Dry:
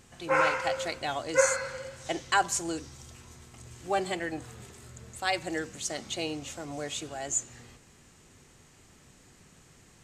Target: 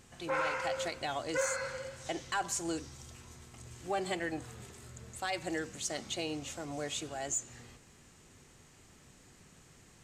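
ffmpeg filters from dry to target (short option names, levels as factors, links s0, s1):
-af "asoftclip=type=tanh:threshold=0.15,alimiter=limit=0.0708:level=0:latency=1:release=116,volume=0.794"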